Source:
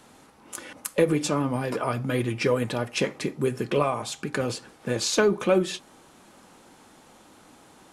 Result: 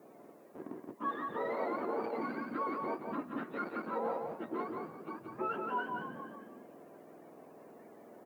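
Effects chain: spectrum mirrored in octaves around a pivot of 760 Hz; in parallel at -5 dB: Schmitt trigger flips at -32 dBFS; on the sum: LPF 1000 Hz 12 dB/oct; frequency-shifting echo 0.144 s, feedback 47%, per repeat +42 Hz, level -17 dB; reverse; compressor 6:1, threshold -36 dBFS, peak gain reduction 20 dB; reverse; HPF 270 Hz 24 dB/oct; echo 0.169 s -4.5 dB; added noise blue -78 dBFS; speed mistake 25 fps video run at 24 fps; gain +2.5 dB

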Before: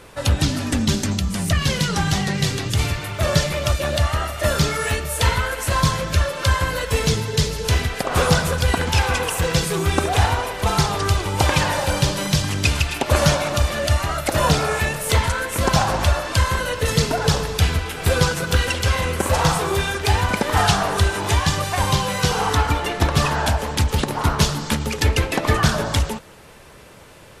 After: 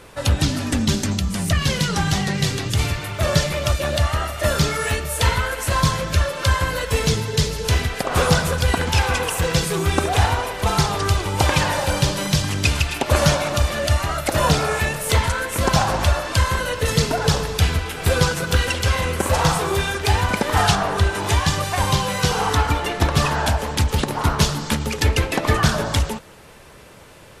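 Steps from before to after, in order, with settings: 20.75–21.15 high shelf 4500 Hz -7.5 dB

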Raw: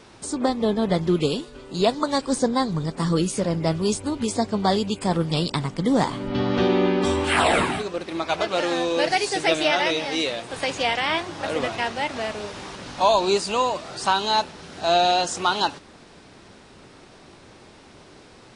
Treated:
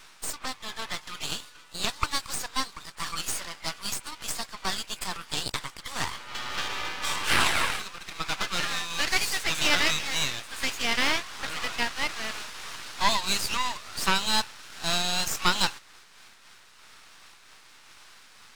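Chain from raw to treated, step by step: HPF 1100 Hz 24 dB/oct; half-wave rectifier; noise-modulated level, depth 55%; gain +7.5 dB

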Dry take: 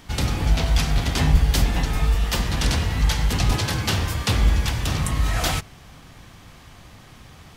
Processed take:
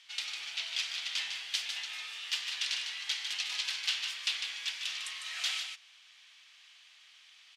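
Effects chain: ladder band-pass 3600 Hz, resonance 30%; echo 0.152 s -6.5 dB; gain +5 dB

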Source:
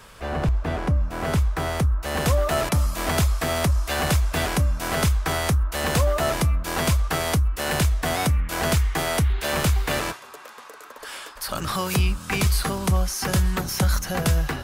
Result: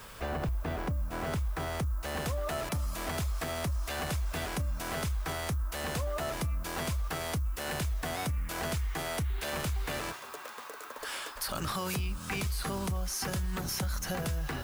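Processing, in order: limiter -18.5 dBFS, peak gain reduction 7 dB; compressor 2.5:1, threshold -31 dBFS, peak gain reduction 7 dB; added noise violet -56 dBFS; gain -1.5 dB

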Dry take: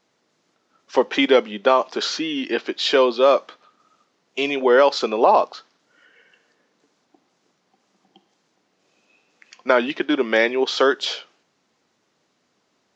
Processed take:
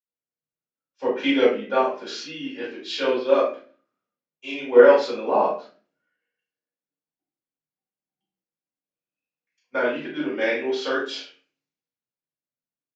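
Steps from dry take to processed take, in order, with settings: doubler 33 ms -5 dB; reverb RT60 0.50 s, pre-delay 46 ms; three-band expander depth 70%; gain -10 dB

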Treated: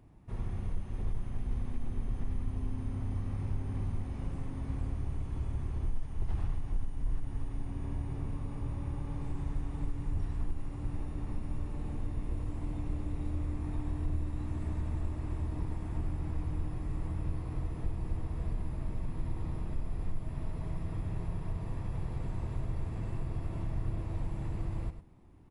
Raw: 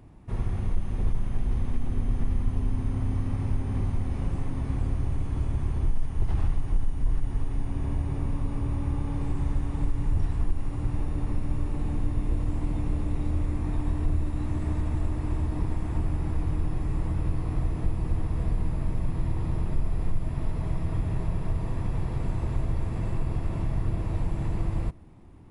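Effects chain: echo 0.101 s -10.5 dB; gain -8 dB

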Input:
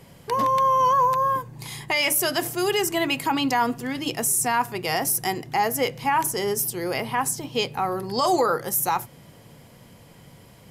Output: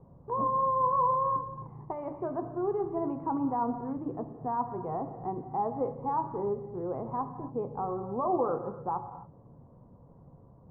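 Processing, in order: elliptic low-pass 1100 Hz, stop band 80 dB; low shelf 160 Hz +6.5 dB; non-linear reverb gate 0.3 s flat, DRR 8.5 dB; gain -7.5 dB

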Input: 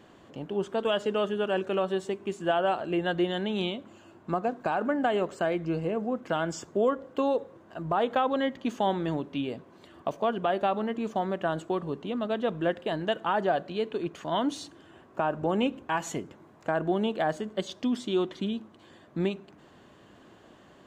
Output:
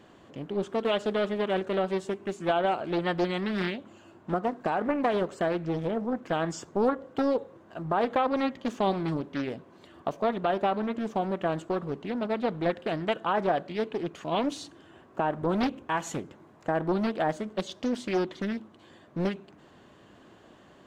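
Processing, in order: Doppler distortion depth 0.62 ms

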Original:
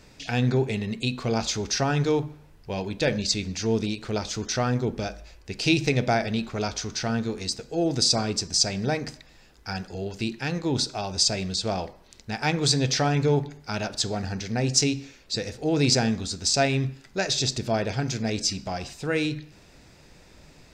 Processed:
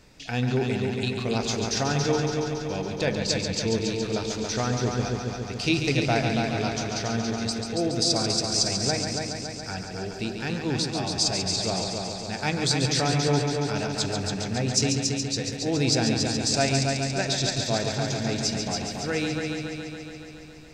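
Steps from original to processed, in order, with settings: multi-head echo 0.14 s, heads first and second, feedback 67%, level -7 dB; gain -2.5 dB

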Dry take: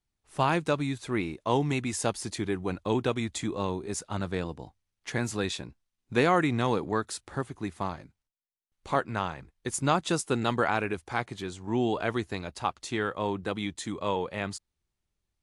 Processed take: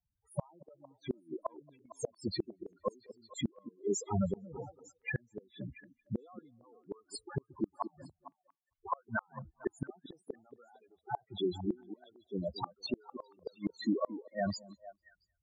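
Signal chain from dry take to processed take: HPF 75 Hz 6 dB/oct; low shelf 340 Hz -5.5 dB; loudest bins only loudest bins 4; flipped gate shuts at -31 dBFS, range -37 dB; on a send: delay with a stepping band-pass 0.227 s, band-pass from 320 Hz, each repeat 1.4 oct, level -10.5 dB; on the sum: gain +9.5 dB

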